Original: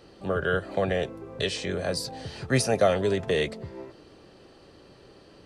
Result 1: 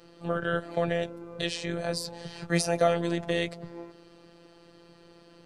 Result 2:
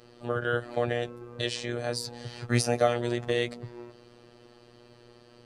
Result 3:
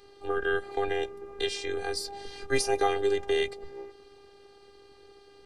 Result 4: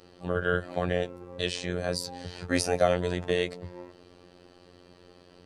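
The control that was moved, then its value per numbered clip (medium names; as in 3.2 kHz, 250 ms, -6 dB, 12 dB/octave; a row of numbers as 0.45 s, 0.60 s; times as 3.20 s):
robot voice, frequency: 170 Hz, 120 Hz, 400 Hz, 89 Hz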